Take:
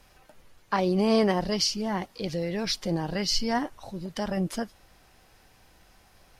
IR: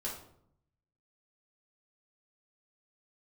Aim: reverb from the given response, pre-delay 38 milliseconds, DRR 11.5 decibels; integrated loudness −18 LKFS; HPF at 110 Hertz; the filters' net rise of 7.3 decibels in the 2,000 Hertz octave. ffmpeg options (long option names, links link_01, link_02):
-filter_complex "[0:a]highpass=110,equalizer=frequency=2000:width_type=o:gain=8.5,asplit=2[link_01][link_02];[1:a]atrim=start_sample=2205,adelay=38[link_03];[link_02][link_03]afir=irnorm=-1:irlink=0,volume=-13dB[link_04];[link_01][link_04]amix=inputs=2:normalize=0,volume=8.5dB"